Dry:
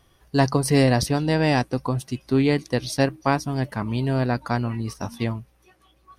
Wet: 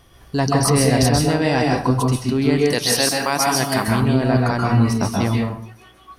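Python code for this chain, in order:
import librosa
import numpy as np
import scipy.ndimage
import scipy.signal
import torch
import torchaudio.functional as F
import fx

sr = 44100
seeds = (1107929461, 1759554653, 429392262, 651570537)

p1 = fx.riaa(x, sr, side='recording', at=(2.7, 3.88))
p2 = fx.over_compress(p1, sr, threshold_db=-27.0, ratio=-1.0)
p3 = p1 + F.gain(torch.from_numpy(p2), 3.0).numpy()
p4 = fx.rev_plate(p3, sr, seeds[0], rt60_s=0.5, hf_ratio=0.7, predelay_ms=120, drr_db=-1.0)
y = F.gain(torch.from_numpy(p4), -3.0).numpy()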